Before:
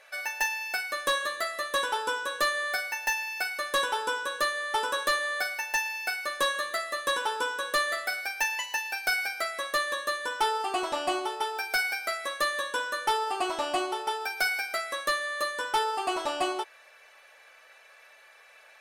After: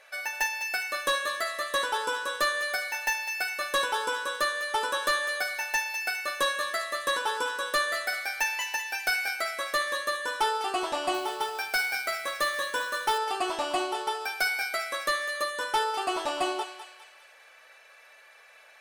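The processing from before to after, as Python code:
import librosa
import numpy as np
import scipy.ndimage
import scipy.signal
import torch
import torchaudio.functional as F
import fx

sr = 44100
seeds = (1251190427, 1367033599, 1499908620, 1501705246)

y = fx.echo_thinned(x, sr, ms=203, feedback_pct=48, hz=1000.0, wet_db=-9.0)
y = fx.quant_float(y, sr, bits=2, at=(11.14, 13.18))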